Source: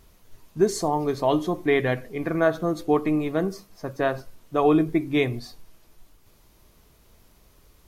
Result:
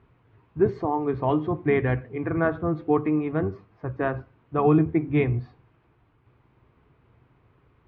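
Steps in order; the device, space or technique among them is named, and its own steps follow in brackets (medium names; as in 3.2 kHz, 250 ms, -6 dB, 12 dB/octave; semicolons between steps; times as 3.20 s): sub-octave bass pedal (octave divider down 1 oct, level -4 dB; cabinet simulation 83–2300 Hz, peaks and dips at 120 Hz +8 dB, 200 Hz -6 dB, 600 Hz -7 dB, 1.9 kHz -3 dB)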